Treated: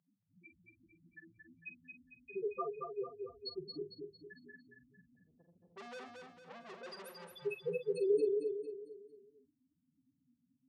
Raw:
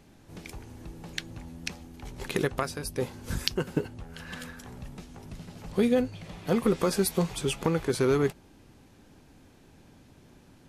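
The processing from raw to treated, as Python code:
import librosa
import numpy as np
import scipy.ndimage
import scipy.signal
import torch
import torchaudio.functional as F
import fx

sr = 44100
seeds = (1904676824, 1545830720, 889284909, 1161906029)

y = fx.vibrato(x, sr, rate_hz=6.0, depth_cents=9.1)
y = fx.spec_topn(y, sr, count=1)
y = fx.tube_stage(y, sr, drive_db=49.0, bias=0.3, at=(5.15, 7.34))
y = fx.bandpass_edges(y, sr, low_hz=530.0, high_hz=7600.0)
y = fx.doubler(y, sr, ms=46.0, db=-10)
y = fx.echo_feedback(y, sr, ms=226, feedback_pct=43, wet_db=-4.5)
y = y * librosa.db_to_amplitude(5.5)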